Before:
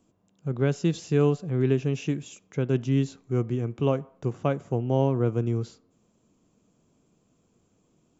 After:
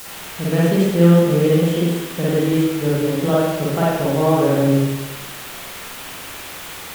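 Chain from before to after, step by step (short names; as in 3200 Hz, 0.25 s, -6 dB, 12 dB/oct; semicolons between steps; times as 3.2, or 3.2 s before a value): requantised 6-bit, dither triangular; varispeed +18%; spring tank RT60 1.1 s, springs 47/58 ms, chirp 60 ms, DRR -7.5 dB; gain +1 dB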